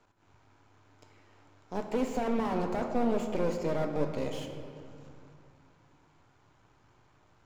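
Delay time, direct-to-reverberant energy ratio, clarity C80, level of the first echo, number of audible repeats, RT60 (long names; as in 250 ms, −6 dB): no echo audible, 4.5 dB, 7.0 dB, no echo audible, no echo audible, 2.5 s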